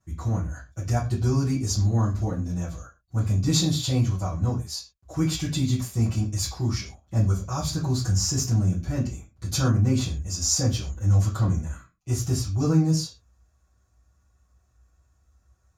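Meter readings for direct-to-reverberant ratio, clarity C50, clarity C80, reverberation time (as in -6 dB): -13.5 dB, 10.5 dB, 15.5 dB, not exponential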